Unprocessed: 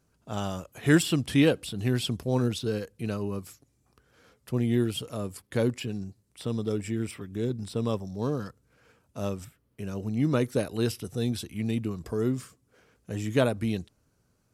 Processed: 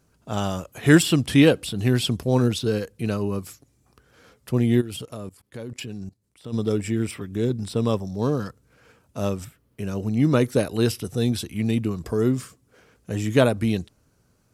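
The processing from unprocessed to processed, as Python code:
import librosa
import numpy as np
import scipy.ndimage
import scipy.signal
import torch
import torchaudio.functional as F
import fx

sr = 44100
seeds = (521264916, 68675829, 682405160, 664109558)

y = fx.level_steps(x, sr, step_db=20, at=(4.8, 6.52), fade=0.02)
y = y * 10.0 ** (6.0 / 20.0)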